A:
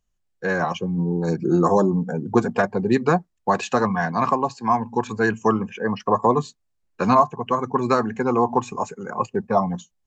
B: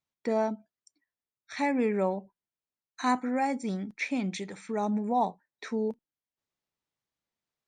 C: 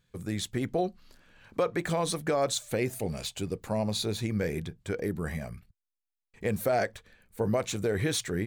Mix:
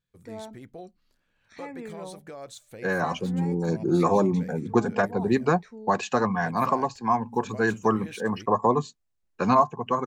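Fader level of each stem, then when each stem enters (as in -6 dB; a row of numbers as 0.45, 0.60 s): -3.5, -12.5, -14.0 dB; 2.40, 0.00, 0.00 s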